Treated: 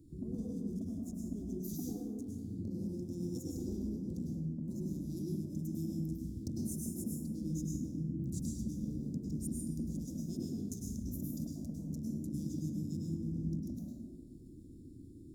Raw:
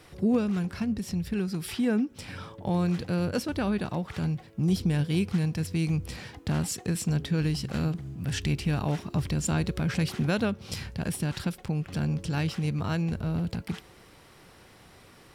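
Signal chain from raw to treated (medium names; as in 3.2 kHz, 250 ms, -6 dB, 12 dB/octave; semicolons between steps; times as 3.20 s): local Wiener filter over 9 samples; elliptic band-stop 250–5000 Hz, stop band 50 dB; compression 16:1, threshold -41 dBFS, peak gain reduction 20 dB; formant shift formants +4 st; plate-style reverb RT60 1.5 s, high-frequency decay 0.4×, pre-delay 90 ms, DRR -4 dB; trim +1.5 dB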